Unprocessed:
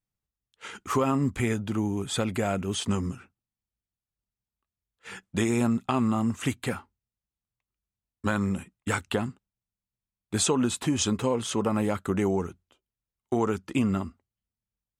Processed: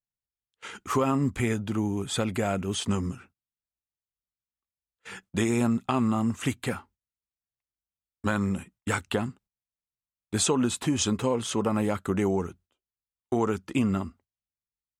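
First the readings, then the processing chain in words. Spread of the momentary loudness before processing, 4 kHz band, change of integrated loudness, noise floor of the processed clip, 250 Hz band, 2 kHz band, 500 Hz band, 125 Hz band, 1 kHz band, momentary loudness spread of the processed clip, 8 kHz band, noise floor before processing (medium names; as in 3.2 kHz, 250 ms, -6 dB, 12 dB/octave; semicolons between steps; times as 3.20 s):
11 LU, 0.0 dB, 0.0 dB, under -85 dBFS, 0.0 dB, 0.0 dB, 0.0 dB, 0.0 dB, 0.0 dB, 11 LU, 0.0 dB, under -85 dBFS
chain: gate -54 dBFS, range -12 dB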